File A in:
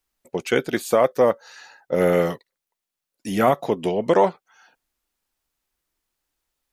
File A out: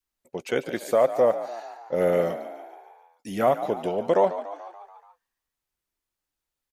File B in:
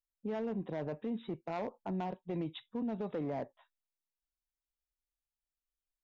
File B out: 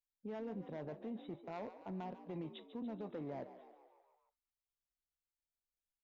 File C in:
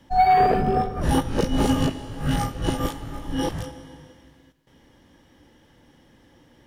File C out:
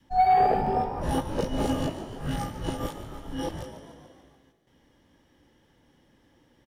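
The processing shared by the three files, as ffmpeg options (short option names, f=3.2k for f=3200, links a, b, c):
-filter_complex "[0:a]adynamicequalizer=threshold=0.0224:dfrequency=610:dqfactor=2:tfrequency=610:tqfactor=2:attack=5:release=100:ratio=0.375:range=3.5:mode=boostabove:tftype=bell,asplit=7[a][b][c][d][e][f][g];[b]adelay=144,afreqshift=54,volume=-13dB[h];[c]adelay=288,afreqshift=108,volume=-17.6dB[i];[d]adelay=432,afreqshift=162,volume=-22.2dB[j];[e]adelay=576,afreqshift=216,volume=-26.7dB[k];[f]adelay=720,afreqshift=270,volume=-31.3dB[l];[g]adelay=864,afreqshift=324,volume=-35.9dB[m];[a][h][i][j][k][l][m]amix=inputs=7:normalize=0,volume=-7.5dB"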